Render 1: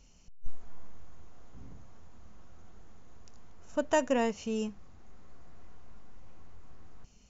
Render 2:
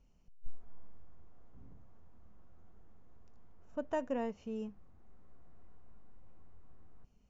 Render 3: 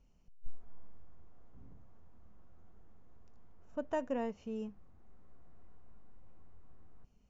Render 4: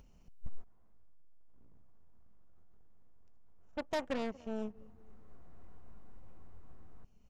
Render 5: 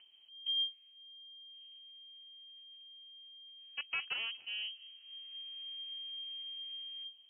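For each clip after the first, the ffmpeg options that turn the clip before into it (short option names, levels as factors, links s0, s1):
-af "lowpass=f=1100:p=1,volume=0.447"
-af anull
-filter_complex "[0:a]asplit=2[s0][s1];[s1]adelay=235,lowpass=f=2000:p=1,volume=0.0794,asplit=2[s2][s3];[s3]adelay=235,lowpass=f=2000:p=1,volume=0.43,asplit=2[s4][s5];[s5]adelay=235,lowpass=f=2000:p=1,volume=0.43[s6];[s0][s2][s4][s6]amix=inputs=4:normalize=0,aeval=exprs='0.0631*(cos(1*acos(clip(val(0)/0.0631,-1,1)))-cos(1*PI/2))+0.00794*(cos(2*acos(clip(val(0)/0.0631,-1,1)))-cos(2*PI/2))+0.00631*(cos(6*acos(clip(val(0)/0.0631,-1,1)))-cos(6*PI/2))+0.0158*(cos(8*acos(clip(val(0)/0.0631,-1,1)))-cos(8*PI/2))':c=same,acompressor=mode=upward:threshold=0.00282:ratio=2.5,volume=0.891"
-af "lowpass=f=2700:t=q:w=0.5098,lowpass=f=2700:t=q:w=0.6013,lowpass=f=2700:t=q:w=0.9,lowpass=f=2700:t=q:w=2.563,afreqshift=-3200,volume=0.75"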